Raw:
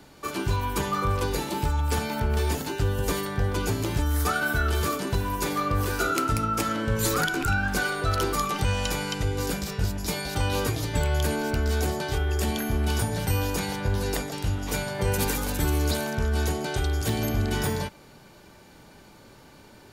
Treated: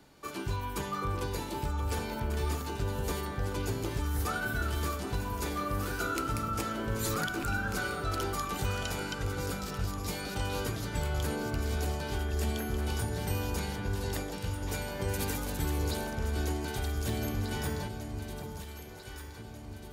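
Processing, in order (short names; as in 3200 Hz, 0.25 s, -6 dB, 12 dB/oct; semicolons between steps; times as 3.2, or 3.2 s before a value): echo with dull and thin repeats by turns 0.771 s, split 980 Hz, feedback 69%, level -6 dB; gain -8 dB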